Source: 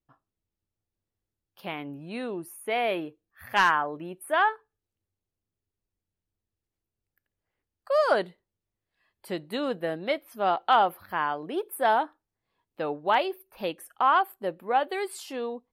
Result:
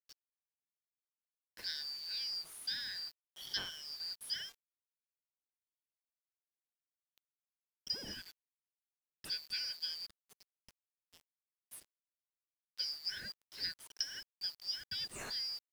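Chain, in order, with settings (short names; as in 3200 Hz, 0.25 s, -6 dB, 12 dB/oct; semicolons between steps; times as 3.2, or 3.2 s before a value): four-band scrambler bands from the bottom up 4321; compressor 1.5:1, threshold -39 dBFS, peak gain reduction 8 dB; treble ducked by the level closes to 1900 Hz, closed at -26 dBFS; spectral gain 10.06–12.5, 490–6100 Hz -28 dB; dynamic EQ 3100 Hz, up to -6 dB, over -51 dBFS, Q 0.85; bit-crush 9-bit; high shelf 8600 Hz -6.5 dB; gain +2.5 dB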